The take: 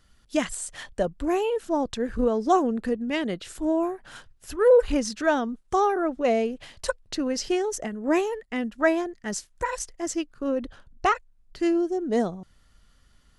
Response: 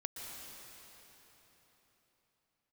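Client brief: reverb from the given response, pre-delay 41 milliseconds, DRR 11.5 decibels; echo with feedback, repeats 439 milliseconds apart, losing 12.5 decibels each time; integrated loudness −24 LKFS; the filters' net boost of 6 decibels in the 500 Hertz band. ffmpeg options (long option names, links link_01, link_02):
-filter_complex "[0:a]equalizer=frequency=500:width_type=o:gain=7,aecho=1:1:439|878|1317:0.237|0.0569|0.0137,asplit=2[link_01][link_02];[1:a]atrim=start_sample=2205,adelay=41[link_03];[link_02][link_03]afir=irnorm=-1:irlink=0,volume=-11dB[link_04];[link_01][link_04]amix=inputs=2:normalize=0,volume=-3dB"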